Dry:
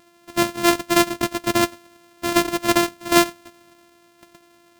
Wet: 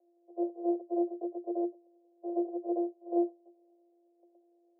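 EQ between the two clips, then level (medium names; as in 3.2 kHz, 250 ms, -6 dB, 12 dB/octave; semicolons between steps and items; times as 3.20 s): rippled Chebyshev high-pass 340 Hz, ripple 9 dB; rippled Chebyshev low-pass 790 Hz, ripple 6 dB; 0.0 dB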